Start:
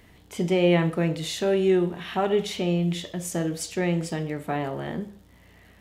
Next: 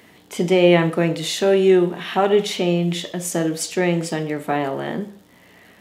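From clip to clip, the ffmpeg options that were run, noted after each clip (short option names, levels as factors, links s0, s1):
-af "highpass=190,volume=2.24"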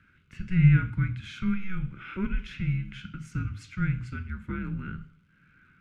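-filter_complex "[0:a]asplit=3[s0][s1][s2];[s0]bandpass=f=530:t=q:w=8,volume=1[s3];[s1]bandpass=f=1840:t=q:w=8,volume=0.501[s4];[s2]bandpass=f=2480:t=q:w=8,volume=0.355[s5];[s3][s4][s5]amix=inputs=3:normalize=0,afreqshift=-380"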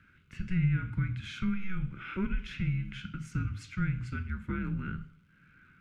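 -af "acompressor=threshold=0.0447:ratio=3"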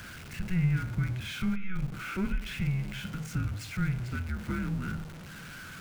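-af "aeval=exprs='val(0)+0.5*0.0106*sgn(val(0))':c=same"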